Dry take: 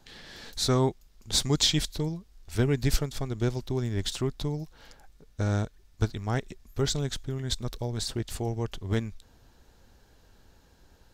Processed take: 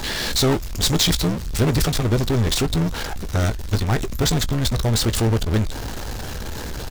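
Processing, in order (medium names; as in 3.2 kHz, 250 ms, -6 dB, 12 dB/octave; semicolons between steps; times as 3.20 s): power-law waveshaper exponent 0.35; granular stretch 0.62×, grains 27 ms; doubling 18 ms -13 dB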